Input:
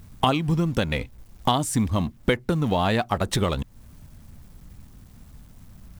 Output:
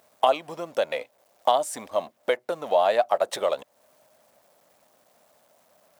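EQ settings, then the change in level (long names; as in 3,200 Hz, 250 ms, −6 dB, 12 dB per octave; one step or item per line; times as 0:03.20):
high-pass with resonance 600 Hz, resonance Q 4.9
−5.0 dB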